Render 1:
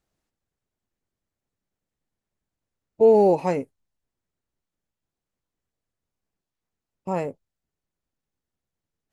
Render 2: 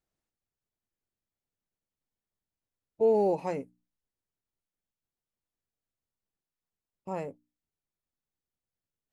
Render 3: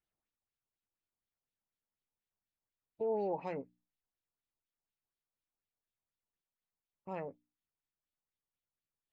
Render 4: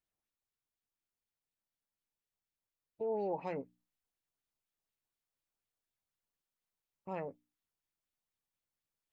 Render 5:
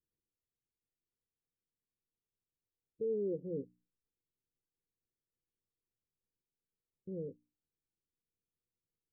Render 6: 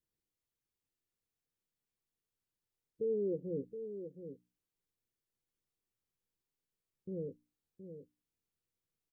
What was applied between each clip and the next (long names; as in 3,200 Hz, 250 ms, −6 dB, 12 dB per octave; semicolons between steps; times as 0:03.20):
mains-hum notches 60/120/180/240/300 Hz; level −8.5 dB
brickwall limiter −22.5 dBFS, peak gain reduction 6.5 dB; auto-filter low-pass sine 4.1 Hz 870–3,800 Hz; level −7 dB
speech leveller 0.5 s; level +2.5 dB
Chebyshev low-pass with heavy ripple 510 Hz, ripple 3 dB; level +4 dB
single-tap delay 720 ms −9.5 dB; level +1 dB